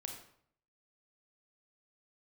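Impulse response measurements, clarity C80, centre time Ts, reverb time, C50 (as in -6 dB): 8.5 dB, 27 ms, 0.60 s, 5.5 dB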